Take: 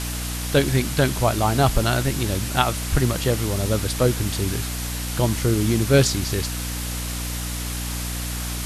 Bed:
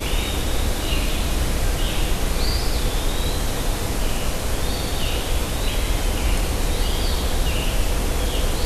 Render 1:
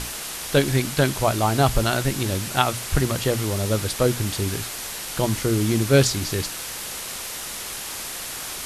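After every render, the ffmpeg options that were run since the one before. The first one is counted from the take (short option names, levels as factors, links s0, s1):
-af "bandreject=f=60:t=h:w=6,bandreject=f=120:t=h:w=6,bandreject=f=180:t=h:w=6,bandreject=f=240:t=h:w=6,bandreject=f=300:t=h:w=6"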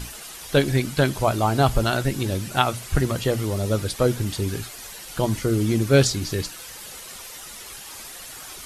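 -af "afftdn=nr=10:nf=-33"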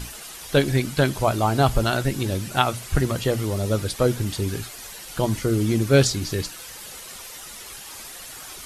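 -af anull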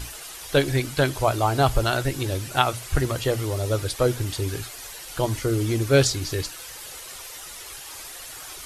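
-af "equalizer=f=200:w=3.3:g=-14.5"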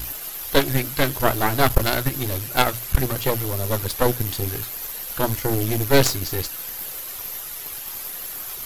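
-filter_complex "[0:a]acrossover=split=1500[s0][s1];[s1]aexciter=amount=8.1:drive=5.8:freq=12000[s2];[s0][s2]amix=inputs=2:normalize=0,aeval=exprs='0.708*(cos(1*acos(clip(val(0)/0.708,-1,1)))-cos(1*PI/2))+0.178*(cos(6*acos(clip(val(0)/0.708,-1,1)))-cos(6*PI/2))':c=same"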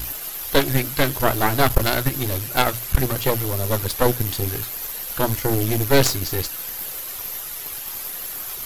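-af "volume=1.19,alimiter=limit=0.708:level=0:latency=1"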